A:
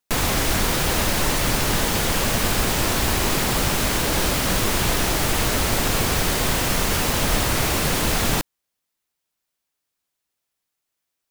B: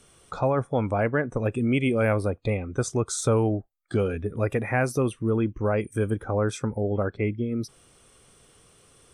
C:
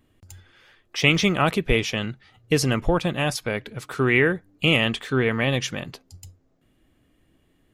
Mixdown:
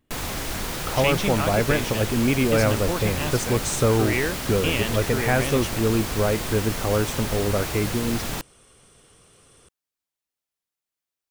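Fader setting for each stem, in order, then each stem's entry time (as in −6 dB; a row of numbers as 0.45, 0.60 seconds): −8.5, +2.0, −6.5 decibels; 0.00, 0.55, 0.00 seconds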